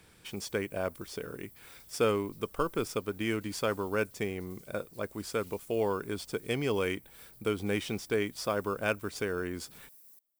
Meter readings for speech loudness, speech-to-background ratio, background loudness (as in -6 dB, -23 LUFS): -33.5 LUFS, 19.5 dB, -53.0 LUFS